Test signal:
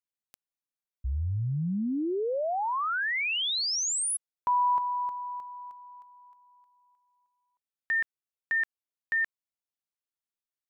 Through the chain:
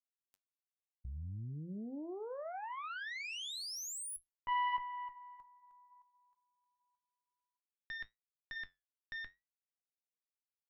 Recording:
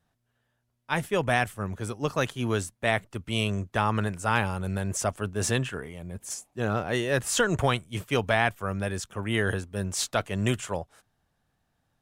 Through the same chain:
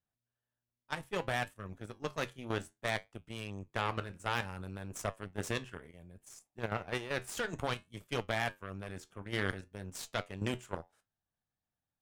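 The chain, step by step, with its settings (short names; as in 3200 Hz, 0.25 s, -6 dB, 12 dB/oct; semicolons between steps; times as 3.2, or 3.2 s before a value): added harmonics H 4 -15 dB, 7 -20 dB, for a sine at -8 dBFS; level quantiser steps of 10 dB; flange 0.61 Hz, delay 8.7 ms, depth 3.6 ms, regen -70%; gain +1 dB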